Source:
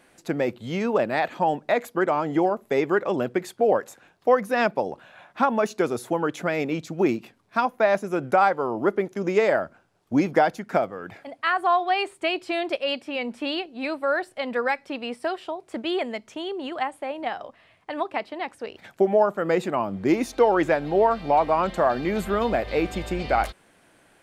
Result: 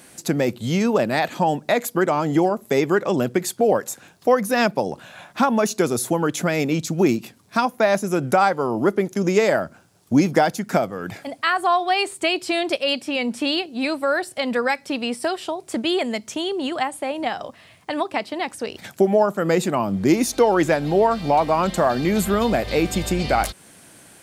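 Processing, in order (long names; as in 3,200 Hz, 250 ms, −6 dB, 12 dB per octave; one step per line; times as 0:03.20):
high-pass filter 160 Hz 6 dB per octave
bass and treble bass +11 dB, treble +13 dB
in parallel at 0 dB: downward compressor, threshold −30 dBFS, peak gain reduction 16.5 dB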